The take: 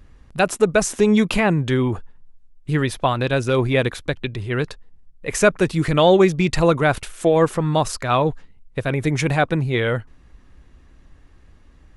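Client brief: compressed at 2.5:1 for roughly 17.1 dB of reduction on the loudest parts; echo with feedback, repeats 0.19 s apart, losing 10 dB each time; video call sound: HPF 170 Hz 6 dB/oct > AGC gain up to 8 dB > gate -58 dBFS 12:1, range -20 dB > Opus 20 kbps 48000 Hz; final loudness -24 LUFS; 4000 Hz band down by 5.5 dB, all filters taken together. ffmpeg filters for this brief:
-af "equalizer=f=4k:t=o:g=-7,acompressor=threshold=-37dB:ratio=2.5,highpass=f=170:p=1,aecho=1:1:190|380|570|760:0.316|0.101|0.0324|0.0104,dynaudnorm=m=8dB,agate=range=-20dB:threshold=-58dB:ratio=12,volume=12dB" -ar 48000 -c:a libopus -b:a 20k

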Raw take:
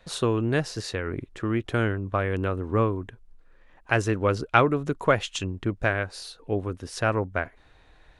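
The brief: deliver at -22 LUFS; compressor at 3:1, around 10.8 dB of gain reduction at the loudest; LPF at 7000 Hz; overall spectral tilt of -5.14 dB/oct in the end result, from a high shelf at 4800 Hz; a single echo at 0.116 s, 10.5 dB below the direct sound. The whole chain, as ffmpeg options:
-af "lowpass=7k,highshelf=f=4.8k:g=5.5,acompressor=threshold=-28dB:ratio=3,aecho=1:1:116:0.299,volume=10dB"

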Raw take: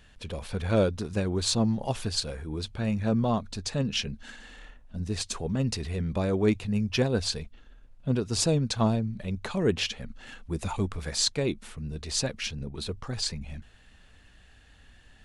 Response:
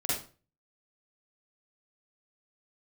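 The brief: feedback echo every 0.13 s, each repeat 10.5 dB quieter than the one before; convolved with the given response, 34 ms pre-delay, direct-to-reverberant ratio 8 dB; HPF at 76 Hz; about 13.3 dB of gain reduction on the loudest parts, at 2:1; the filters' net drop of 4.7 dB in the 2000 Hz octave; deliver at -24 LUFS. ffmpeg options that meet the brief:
-filter_complex "[0:a]highpass=76,equalizer=f=2k:t=o:g=-6.5,acompressor=threshold=-45dB:ratio=2,aecho=1:1:130|260|390:0.299|0.0896|0.0269,asplit=2[a][b];[1:a]atrim=start_sample=2205,adelay=34[c];[b][c]afir=irnorm=-1:irlink=0,volume=-15dB[d];[a][d]amix=inputs=2:normalize=0,volume=15.5dB"

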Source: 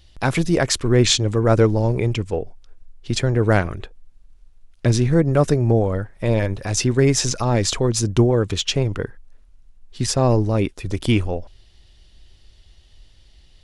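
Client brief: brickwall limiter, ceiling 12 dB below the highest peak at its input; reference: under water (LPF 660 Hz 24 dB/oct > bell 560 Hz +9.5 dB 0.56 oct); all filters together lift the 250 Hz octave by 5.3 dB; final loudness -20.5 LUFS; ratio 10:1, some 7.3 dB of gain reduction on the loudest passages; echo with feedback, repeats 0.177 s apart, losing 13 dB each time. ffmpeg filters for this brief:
-af "equalizer=f=250:t=o:g=6,acompressor=threshold=-15dB:ratio=10,alimiter=limit=-16dB:level=0:latency=1,lowpass=f=660:w=0.5412,lowpass=f=660:w=1.3066,equalizer=f=560:t=o:w=0.56:g=9.5,aecho=1:1:177|354|531:0.224|0.0493|0.0108,volume=4.5dB"

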